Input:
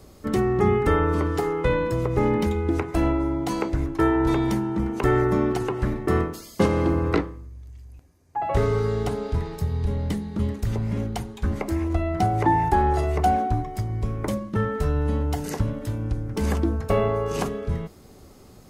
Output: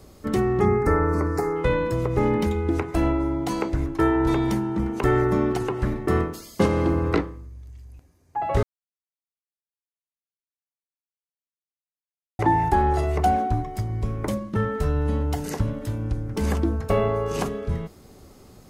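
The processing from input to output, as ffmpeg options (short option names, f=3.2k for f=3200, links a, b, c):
-filter_complex "[0:a]asettb=1/sr,asplit=3[a][b][c];[a]atrim=end=0.654[d];[b]atrim=start=0.65:end=1.56,asetpts=PTS-STARTPTS,afade=t=in:d=0.004:c=qsin,afade=t=out:st=0.906:d=0.004:c=qsin,asuperstop=centerf=3200:order=4:qfactor=1.3[e];[c]atrim=start=1.556[f];[d][e]acrossfade=d=0.004:c1=hsin:c2=qsin[g];[g][f]acrossfade=d=0.004:c1=qsin:c2=hsin,asplit=3[h][i][j];[h]atrim=end=8.63,asetpts=PTS-STARTPTS,afade=t=out:st=8.626:d=0.004:c=hsin[k];[i]atrim=start=8.63:end=12.39,asetpts=PTS-STARTPTS,volume=0[l];[j]atrim=start=12.39,asetpts=PTS-STARTPTS,afade=t=in:d=0.004:c=hsin[m];[k][l][m]concat=n=3:v=0:a=1"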